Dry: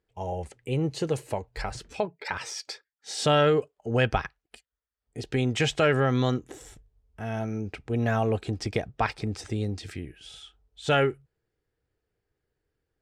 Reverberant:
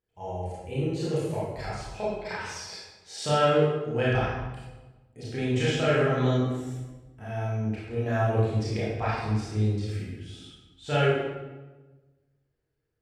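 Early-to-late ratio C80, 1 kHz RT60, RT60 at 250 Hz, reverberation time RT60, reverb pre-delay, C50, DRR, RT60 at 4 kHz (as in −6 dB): 1.5 dB, 1.1 s, 1.5 s, 1.2 s, 24 ms, −2.0 dB, −8.5 dB, 0.85 s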